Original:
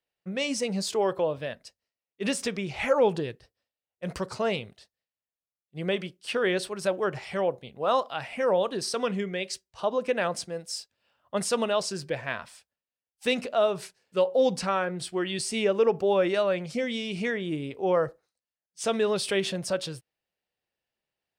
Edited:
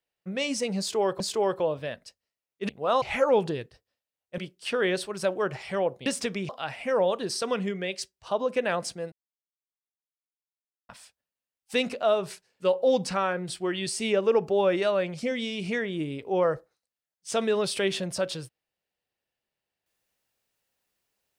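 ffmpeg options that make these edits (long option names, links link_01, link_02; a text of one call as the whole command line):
ffmpeg -i in.wav -filter_complex "[0:a]asplit=9[link_01][link_02][link_03][link_04][link_05][link_06][link_07][link_08][link_09];[link_01]atrim=end=1.202[link_10];[link_02]atrim=start=0.788:end=2.282[link_11];[link_03]atrim=start=7.678:end=8.012[link_12];[link_04]atrim=start=2.708:end=4.072[link_13];[link_05]atrim=start=5.998:end=7.682[link_14];[link_06]atrim=start=2.278:end=2.712[link_15];[link_07]atrim=start=8.008:end=10.64,asetpts=PTS-STARTPTS,afade=type=out:start_time=2.628:duration=0.004:curve=hsin[link_16];[link_08]atrim=start=10.64:end=12.41,asetpts=PTS-STARTPTS,volume=0[link_17];[link_09]atrim=start=12.41,asetpts=PTS-STARTPTS,afade=type=in:duration=0.004:curve=hsin[link_18];[link_10][link_11]acrossfade=duration=0.004:curve1=hsin:curve2=hsin[link_19];[link_19][link_12]acrossfade=duration=0.004:curve1=hsin:curve2=hsin[link_20];[link_20][link_13]acrossfade=duration=0.004:curve1=hsin:curve2=hsin[link_21];[link_21][link_14]acrossfade=duration=0.004:curve1=hsin:curve2=hsin[link_22];[link_22][link_15]acrossfade=duration=0.004:curve1=hsin:curve2=hsin[link_23];[link_16][link_17][link_18]concat=n=3:v=0:a=1[link_24];[link_23][link_24]acrossfade=duration=0.004:curve1=hsin:curve2=hsin" out.wav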